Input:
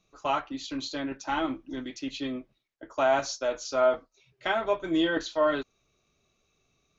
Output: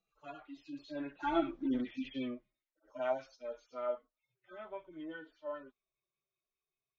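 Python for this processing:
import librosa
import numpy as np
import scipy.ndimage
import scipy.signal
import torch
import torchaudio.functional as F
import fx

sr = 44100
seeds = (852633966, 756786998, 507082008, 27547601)

y = fx.hpss_only(x, sr, part='harmonic')
y = fx.doppler_pass(y, sr, speed_mps=13, closest_m=2.4, pass_at_s=1.71)
y = scipy.signal.sosfilt(scipy.signal.butter(2, 5400.0, 'lowpass', fs=sr, output='sos'), y)
y = fx.peak_eq(y, sr, hz=80.0, db=-9.5, octaves=0.71)
y = fx.bell_lfo(y, sr, hz=5.1, low_hz=510.0, high_hz=2700.0, db=7)
y = y * librosa.db_to_amplitude(4.5)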